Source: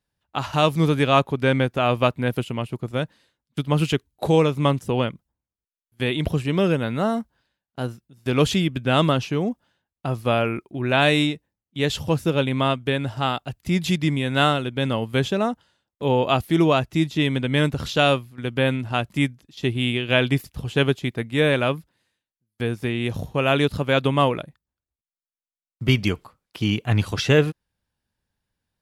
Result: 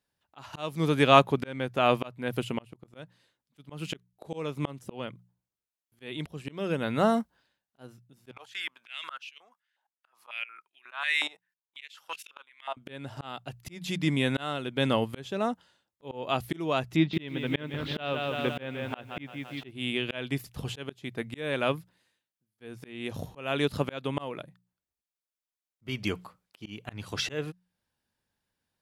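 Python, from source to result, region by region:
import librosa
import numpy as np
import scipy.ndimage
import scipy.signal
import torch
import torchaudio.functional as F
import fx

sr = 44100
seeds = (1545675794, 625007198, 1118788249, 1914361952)

y = fx.chain(x, sr, fx.level_steps(step_db=21),
    fx.filter_held_highpass(hz=5.5, low_hz=810.0, high_hz=2700.0), at=(8.31, 12.77))
y = fx.chain(y, sr, fx.lowpass(hz=3800.0, slope=24),
    fx.echo_crushed(ms=170, feedback_pct=55, bits=8, wet_db=-8), at=(16.96, 19.71))
y = fx.low_shelf(y, sr, hz=110.0, db=-10.5)
y = fx.hum_notches(y, sr, base_hz=60, count=3)
y = fx.auto_swell(y, sr, attack_ms=533.0)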